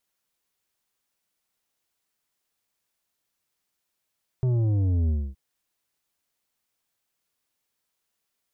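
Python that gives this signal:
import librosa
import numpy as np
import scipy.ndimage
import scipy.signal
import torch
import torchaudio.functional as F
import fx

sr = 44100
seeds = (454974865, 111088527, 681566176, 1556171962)

y = fx.sub_drop(sr, level_db=-21.0, start_hz=130.0, length_s=0.92, drive_db=8.5, fade_s=0.26, end_hz=65.0)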